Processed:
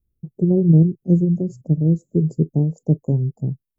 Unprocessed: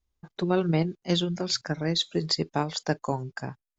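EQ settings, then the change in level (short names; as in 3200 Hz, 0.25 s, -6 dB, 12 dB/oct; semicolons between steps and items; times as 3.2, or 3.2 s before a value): inverse Chebyshev band-stop 1600–3600 Hz, stop band 80 dB; bell 140 Hz +10.5 dB 0.93 oct; +5.5 dB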